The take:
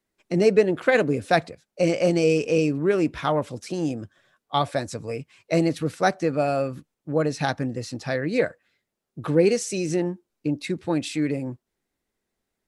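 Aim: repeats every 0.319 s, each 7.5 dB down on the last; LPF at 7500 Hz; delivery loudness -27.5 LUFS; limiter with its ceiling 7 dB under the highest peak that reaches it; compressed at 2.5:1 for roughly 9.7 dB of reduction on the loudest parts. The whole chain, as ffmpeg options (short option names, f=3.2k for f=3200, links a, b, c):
-af "lowpass=7.5k,acompressor=threshold=-28dB:ratio=2.5,alimiter=limit=-20.5dB:level=0:latency=1,aecho=1:1:319|638|957|1276|1595:0.422|0.177|0.0744|0.0312|0.0131,volume=4.5dB"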